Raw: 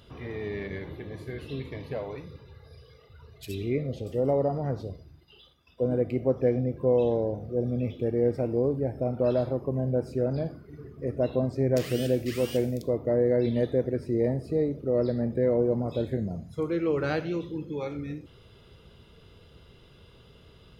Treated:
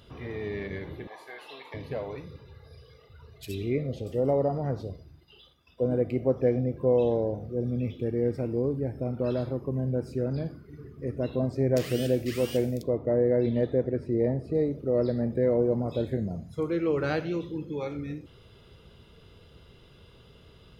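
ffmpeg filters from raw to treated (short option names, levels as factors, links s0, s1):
-filter_complex "[0:a]asettb=1/sr,asplit=3[s0][s1][s2];[s0]atrim=end=1.074[s3];[s1]atrim=start=1.07:end=1.74,asetpts=PTS-STARTPTS,afade=t=in:d=0.004:c=qsin,afade=t=out:st=0.666:d=0.004:c=qsin,highpass=f=840:t=q:w=5[s4];[s2]atrim=start=1.736[s5];[s3][s4]acrossfade=d=0.004:c1=hsin:c2=qsin[s6];[s6][s5]acrossfade=d=0.004:c1=qsin:c2=hsin,asettb=1/sr,asplit=3[s7][s8][s9];[s7]atrim=end=7.484[s10];[s8]atrim=start=7.48:end=11.4,asetpts=PTS-STARTPTS,afade=t=in:d=0.004:c=qsin,afade=t=out:st=3.916:d=0.004:c=qsin,equalizer=f=670:t=o:w=0.92:g=-7[s11];[s9]atrim=start=11.396[s12];[s10][s11]acrossfade=d=0.004:c1=hsin:c2=qsin[s13];[s13][s12]acrossfade=d=0.004:c1=qsin:c2=hsin,asettb=1/sr,asplit=3[s14][s15][s16];[s14]atrim=end=12.834[s17];[s15]atrim=start=12.83:end=14.55,asetpts=PTS-STARTPTS,afade=t=in:d=0.004:c=qsin,afade=t=out:st=1.716:d=0.004:c=qsin,highshelf=f=4200:g=-11.5[s18];[s16]atrim=start=14.546[s19];[s17][s18]acrossfade=d=0.004:c1=hsin:c2=qsin[s20];[s20][s19]acrossfade=d=0.004:c1=qsin:c2=hsin"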